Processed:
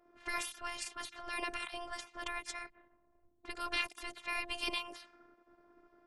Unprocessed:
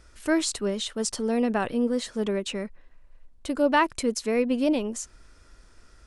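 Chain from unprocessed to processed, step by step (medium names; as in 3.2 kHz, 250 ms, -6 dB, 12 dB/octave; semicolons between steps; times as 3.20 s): spectral gate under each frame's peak -20 dB weak; level-controlled noise filter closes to 570 Hz, open at -39.5 dBFS; robot voice 348 Hz; trim +5 dB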